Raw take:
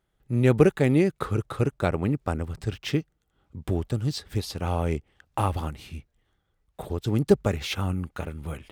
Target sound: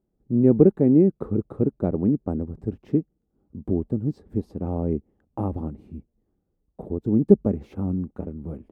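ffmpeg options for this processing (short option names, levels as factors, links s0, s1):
-af "firequalizer=gain_entry='entry(130,0);entry(210,11);entry(590,0);entry(1400,-16);entry(3200,-28);entry(7700,-25)':delay=0.05:min_phase=1,volume=0.75"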